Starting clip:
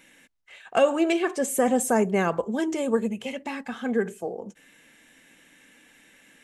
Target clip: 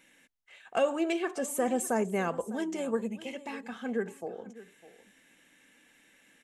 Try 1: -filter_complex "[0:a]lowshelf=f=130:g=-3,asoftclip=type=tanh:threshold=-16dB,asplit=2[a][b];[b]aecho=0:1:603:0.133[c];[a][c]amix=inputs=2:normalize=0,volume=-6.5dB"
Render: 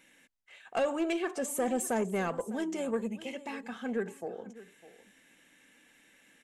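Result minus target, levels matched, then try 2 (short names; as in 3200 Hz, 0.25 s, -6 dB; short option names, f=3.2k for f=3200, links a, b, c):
soft clip: distortion +19 dB
-filter_complex "[0:a]lowshelf=f=130:g=-3,asoftclip=type=tanh:threshold=-4.5dB,asplit=2[a][b];[b]aecho=0:1:603:0.133[c];[a][c]amix=inputs=2:normalize=0,volume=-6.5dB"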